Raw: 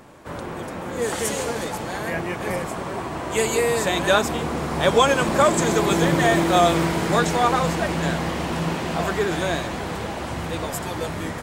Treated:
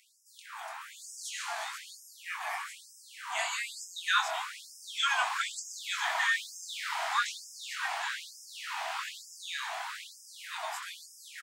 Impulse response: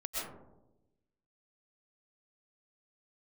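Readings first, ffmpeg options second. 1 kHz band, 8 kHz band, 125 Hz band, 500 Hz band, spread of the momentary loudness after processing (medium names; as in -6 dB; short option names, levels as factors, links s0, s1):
-12.5 dB, -10.0 dB, under -40 dB, -27.0 dB, 17 LU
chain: -filter_complex "[0:a]asplit=2[s0][s1];[1:a]atrim=start_sample=2205[s2];[s1][s2]afir=irnorm=-1:irlink=0,volume=0.133[s3];[s0][s3]amix=inputs=2:normalize=0,acrossover=split=6200[s4][s5];[s5]acompressor=threshold=0.00562:ratio=4:attack=1:release=60[s6];[s4][s6]amix=inputs=2:normalize=0,asplit=2[s7][s8];[s8]adelay=23,volume=0.562[s9];[s7][s9]amix=inputs=2:normalize=0,afftfilt=real='re*gte(b*sr/1024,610*pow(5000/610,0.5+0.5*sin(2*PI*1.1*pts/sr)))':imag='im*gte(b*sr/1024,610*pow(5000/610,0.5+0.5*sin(2*PI*1.1*pts/sr)))':win_size=1024:overlap=0.75,volume=0.473"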